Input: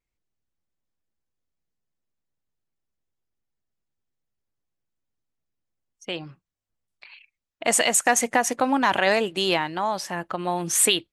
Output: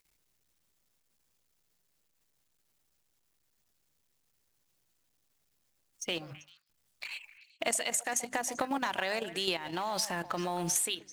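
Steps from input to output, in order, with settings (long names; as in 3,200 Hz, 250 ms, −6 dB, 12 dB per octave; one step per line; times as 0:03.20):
mu-law and A-law mismatch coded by mu
output level in coarse steps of 11 dB
high-shelf EQ 2,800 Hz +7.5 dB
mains-hum notches 50/100/150/200/250/300 Hz
downward compressor 16 to 1, threshold −28 dBFS, peak gain reduction 17 dB
echo through a band-pass that steps 130 ms, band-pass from 710 Hz, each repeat 1.4 octaves, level −11 dB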